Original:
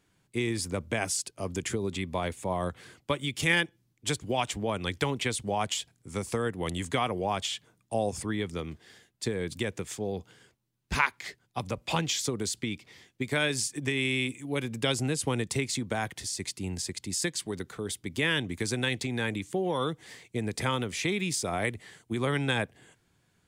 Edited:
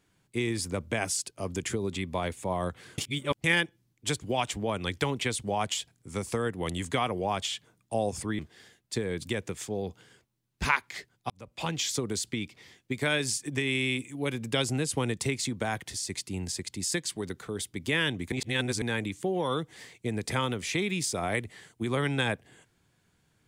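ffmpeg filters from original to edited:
-filter_complex "[0:a]asplit=7[s0][s1][s2][s3][s4][s5][s6];[s0]atrim=end=2.982[s7];[s1]atrim=start=2.978:end=3.442,asetpts=PTS-STARTPTS,areverse[s8];[s2]atrim=start=3.438:end=8.392[s9];[s3]atrim=start=8.688:end=11.6,asetpts=PTS-STARTPTS,afade=t=out:st=2.908:d=0.004:c=hsin[s10];[s4]atrim=start=11.6:end=18.622,asetpts=PTS-STARTPTS,afade=t=in:d=0.57[s11];[s5]atrim=start=18.618:end=19.122,asetpts=PTS-STARTPTS,areverse[s12];[s6]atrim=start=19.118[s13];[s7][s8]acrossfade=d=0.004:c1=hsin:c2=hsin[s14];[s14][s9]acrossfade=d=0.004:c1=hsin:c2=hsin[s15];[s10][s11]concat=n=2:v=0:a=1[s16];[s15][s16]acrossfade=d=0.004:c1=hsin:c2=hsin[s17];[s17][s12]acrossfade=d=0.004:c1=hsin:c2=hsin[s18];[s18][s13]acrossfade=d=0.004:c1=hsin:c2=hsin"

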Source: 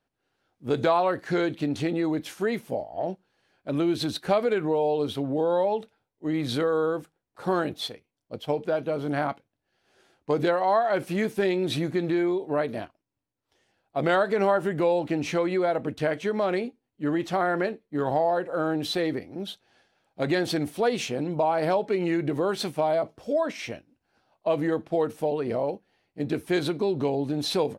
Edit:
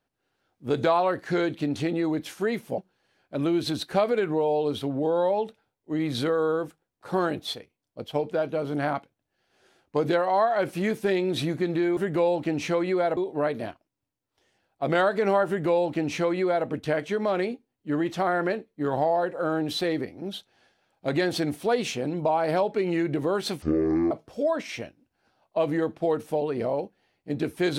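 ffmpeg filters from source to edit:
-filter_complex "[0:a]asplit=6[s0][s1][s2][s3][s4][s5];[s0]atrim=end=2.782[s6];[s1]atrim=start=3.118:end=12.312[s7];[s2]atrim=start=14.608:end=15.812[s8];[s3]atrim=start=12.308:end=22.764[s9];[s4]atrim=start=22.76:end=23.01,asetpts=PTS-STARTPTS,asetrate=22491,aresample=44100[s10];[s5]atrim=start=23.006[s11];[s6][s7]acrossfade=d=0.004:c1=hsin:c2=hsin[s12];[s12][s8]acrossfade=d=0.004:c1=hsin:c2=hsin[s13];[s13][s9]acrossfade=d=0.004:c1=hsin:c2=hsin[s14];[s14][s10]acrossfade=d=0.004:c1=hsin:c2=hsin[s15];[s15][s11]acrossfade=d=0.004:c1=hsin:c2=hsin"

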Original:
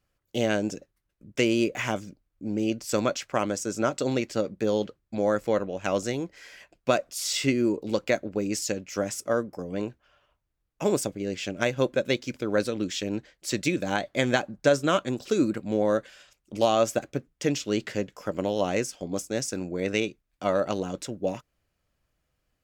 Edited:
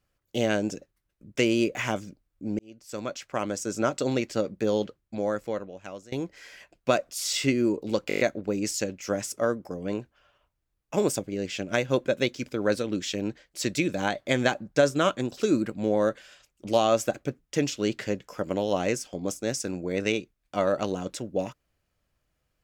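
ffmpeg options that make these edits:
-filter_complex "[0:a]asplit=9[s0][s1][s2][s3][s4][s5][s6][s7][s8];[s0]atrim=end=2.59,asetpts=PTS-STARTPTS,afade=t=out:st=2.586:d=0.004:c=hsin[s9];[s1]atrim=start=2.59:end=6.12,asetpts=PTS-STARTPTS,afade=t=in:d=1.16,afade=t=out:st=2.21:d=1.32:silence=0.0707946[s10];[s2]atrim=start=6.12:end=8.102,asetpts=PTS-STARTPTS,afade=t=in:d=0.004:c=hsin:silence=0.0707946[s11];[s3]atrim=start=8.078:end=8.102[s12];[s4]atrim=start=8.078:end=8.102[s13];[s5]atrim=start=8.078:end=8.102[s14];[s6]atrim=start=8.078:end=8.102[s15];[s7]atrim=start=8.078:end=8.102[s16];[s8]atrim=start=8.078[s17];[s9][s10][s11]concat=n=3:v=0:a=1[s18];[s18][s12]acrossfade=d=0.004:c1=hsin:c2=hsin[s19];[s19][s13]acrossfade=d=0.004:c1=hsin:c2=hsin[s20];[s20][s14]acrossfade=d=0.004:c1=hsin:c2=hsin[s21];[s21][s15]acrossfade=d=0.004:c1=hsin:c2=hsin[s22];[s22][s16]acrossfade=d=0.004:c1=hsin:c2=hsin[s23];[s23][s17]acrossfade=d=0.004:c1=hsin:c2=hsin"

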